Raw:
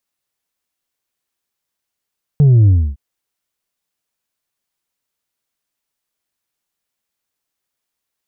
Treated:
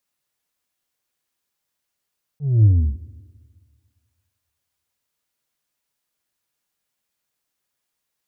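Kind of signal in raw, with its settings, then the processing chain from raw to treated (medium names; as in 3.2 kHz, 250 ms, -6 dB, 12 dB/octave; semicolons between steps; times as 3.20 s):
sub drop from 150 Hz, over 0.56 s, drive 3 dB, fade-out 0.28 s, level -6.5 dB
peak limiter -11.5 dBFS; slow attack 226 ms; two-slope reverb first 0.23 s, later 1.9 s, from -18 dB, DRR 9 dB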